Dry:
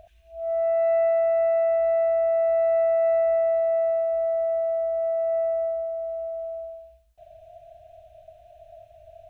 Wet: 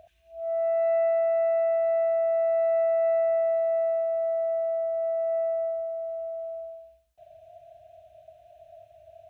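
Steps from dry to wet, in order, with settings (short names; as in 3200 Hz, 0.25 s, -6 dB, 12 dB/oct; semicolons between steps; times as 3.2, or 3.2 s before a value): HPF 90 Hz 12 dB/oct; gain -2.5 dB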